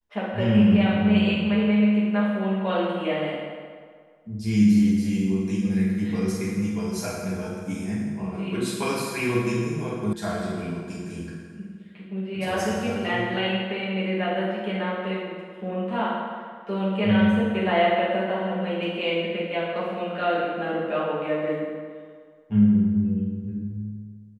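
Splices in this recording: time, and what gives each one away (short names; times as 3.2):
10.13 sound cut off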